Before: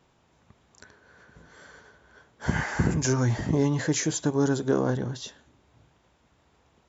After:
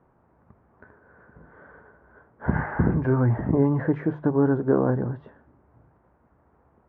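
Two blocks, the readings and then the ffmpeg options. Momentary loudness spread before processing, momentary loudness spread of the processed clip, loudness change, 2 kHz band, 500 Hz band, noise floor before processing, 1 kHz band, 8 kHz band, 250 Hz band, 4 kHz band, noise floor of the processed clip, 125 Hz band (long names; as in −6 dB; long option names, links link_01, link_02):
9 LU, 7 LU, +2.5 dB, −2.0 dB, +3.5 dB, −65 dBFS, +2.5 dB, can't be measured, +3.5 dB, below −30 dB, −63 dBFS, +3.0 dB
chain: -af "lowpass=frequency=1600:width=0.5412,lowpass=frequency=1600:width=1.3066,aemphasis=mode=reproduction:type=75kf,bandreject=frequency=50:width_type=h:width=6,bandreject=frequency=100:width_type=h:width=6,bandreject=frequency=150:width_type=h:width=6,volume=3.5dB"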